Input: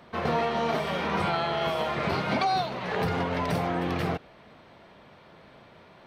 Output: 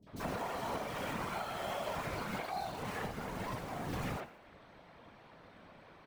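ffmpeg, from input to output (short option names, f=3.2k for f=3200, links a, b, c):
-filter_complex "[0:a]asplit=2[a][b];[b]aeval=exprs='(mod(29.9*val(0)+1,2)-1)/29.9':c=same,volume=-8.5dB[c];[a][c]amix=inputs=2:normalize=0,asettb=1/sr,asplit=3[d][e][f];[d]atrim=end=2.344[g];[e]atrim=start=2.34:end=3.86,asetpts=PTS-STARTPTS,afade=t=in:d=0.004:c=qsin,afade=t=out:st=1.516:d=0.004:c=qsin,acompressor=threshold=-28dB:ratio=6[h];[f]atrim=start=3.856[i];[g][h]acrossfade=d=0.004:c1=hsin:c2=qsin[j];[j][i]acrossfade=d=0.004:c1=qsin:c2=hsin,acrossover=split=360|3600[k][l][m];[m]adelay=30[n];[l]adelay=70[o];[k][o][n]amix=inputs=3:normalize=0,flanger=delay=9.1:depth=1.9:regen=-73:speed=0.79:shape=sinusoidal,afftfilt=real='hypot(re,im)*cos(2*PI*random(0))':imag='hypot(re,im)*sin(2*PI*random(1))':win_size=512:overlap=0.75,asplit=2[p][q];[q]asplit=4[r][s][t][u];[r]adelay=90,afreqshift=62,volume=-17dB[v];[s]adelay=180,afreqshift=124,volume=-24.3dB[w];[t]adelay=270,afreqshift=186,volume=-31.7dB[x];[u]adelay=360,afreqshift=248,volume=-39dB[y];[v][w][x][y]amix=inputs=4:normalize=0[z];[p][z]amix=inputs=2:normalize=0,alimiter=level_in=7.5dB:limit=-24dB:level=0:latency=1:release=461,volume=-7.5dB,volume=3.5dB"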